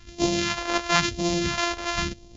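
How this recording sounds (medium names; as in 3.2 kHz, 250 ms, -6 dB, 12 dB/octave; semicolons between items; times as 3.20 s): a buzz of ramps at a fixed pitch in blocks of 128 samples; phasing stages 2, 0.99 Hz, lowest notch 140–1500 Hz; MP2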